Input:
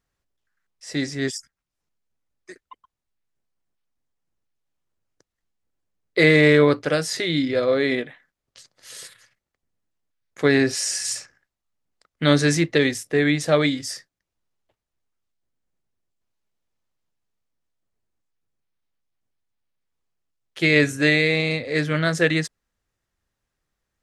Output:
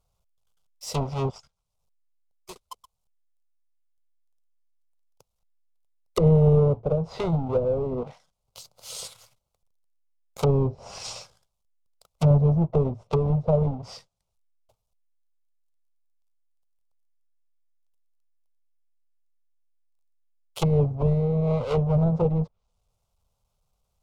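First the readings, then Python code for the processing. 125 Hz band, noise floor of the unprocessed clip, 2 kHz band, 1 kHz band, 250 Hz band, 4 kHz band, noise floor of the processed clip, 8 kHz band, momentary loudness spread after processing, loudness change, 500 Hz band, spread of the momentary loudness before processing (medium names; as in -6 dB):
+4.5 dB, -85 dBFS, under -25 dB, -1.5 dB, -4.5 dB, -15.0 dB, -79 dBFS, -13.0 dB, 18 LU, -3.5 dB, -4.0 dB, 14 LU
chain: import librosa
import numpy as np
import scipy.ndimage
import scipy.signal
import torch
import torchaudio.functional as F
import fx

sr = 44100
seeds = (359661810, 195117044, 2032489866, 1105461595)

y = fx.halfwave_hold(x, sr)
y = fx.env_lowpass_down(y, sr, base_hz=360.0, full_db=-14.0)
y = fx.fixed_phaser(y, sr, hz=730.0, stages=4)
y = y * 10.0 ** (2.0 / 20.0)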